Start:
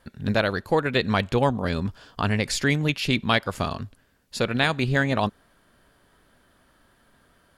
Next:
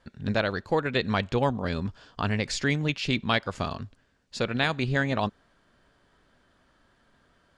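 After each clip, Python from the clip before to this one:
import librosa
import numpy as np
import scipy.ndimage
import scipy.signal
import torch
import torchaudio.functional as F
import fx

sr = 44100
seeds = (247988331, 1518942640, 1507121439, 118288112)

y = scipy.signal.sosfilt(scipy.signal.butter(4, 7700.0, 'lowpass', fs=sr, output='sos'), x)
y = F.gain(torch.from_numpy(y), -3.5).numpy()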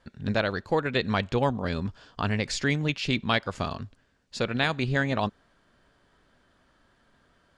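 y = x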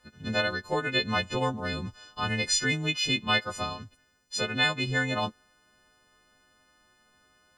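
y = fx.freq_snap(x, sr, grid_st=3)
y = F.gain(torch.from_numpy(y), -3.5).numpy()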